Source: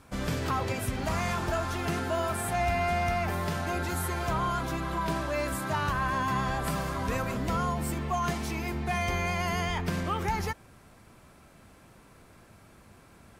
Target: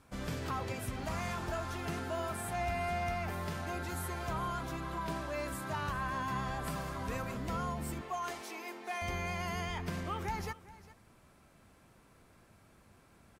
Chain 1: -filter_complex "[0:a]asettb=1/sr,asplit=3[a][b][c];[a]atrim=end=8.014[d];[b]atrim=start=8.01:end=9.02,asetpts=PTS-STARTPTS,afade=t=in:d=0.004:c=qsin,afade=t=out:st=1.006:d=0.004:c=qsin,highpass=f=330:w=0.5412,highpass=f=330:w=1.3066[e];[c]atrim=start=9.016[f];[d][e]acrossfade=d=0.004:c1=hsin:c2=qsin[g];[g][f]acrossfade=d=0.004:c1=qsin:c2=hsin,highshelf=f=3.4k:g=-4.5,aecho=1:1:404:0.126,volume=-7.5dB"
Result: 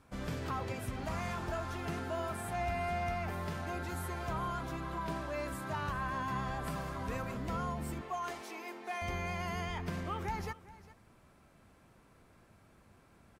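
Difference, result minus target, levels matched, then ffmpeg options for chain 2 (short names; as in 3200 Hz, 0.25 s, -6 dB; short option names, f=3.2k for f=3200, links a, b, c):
8000 Hz band -3.5 dB
-filter_complex "[0:a]asettb=1/sr,asplit=3[a][b][c];[a]atrim=end=8.014[d];[b]atrim=start=8.01:end=9.02,asetpts=PTS-STARTPTS,afade=t=in:d=0.004:c=qsin,afade=t=out:st=1.006:d=0.004:c=qsin,highpass=f=330:w=0.5412,highpass=f=330:w=1.3066[e];[c]atrim=start=9.016[f];[d][e]acrossfade=d=0.004:c1=hsin:c2=qsin[g];[g][f]acrossfade=d=0.004:c1=qsin:c2=hsin,aecho=1:1:404:0.126,volume=-7.5dB"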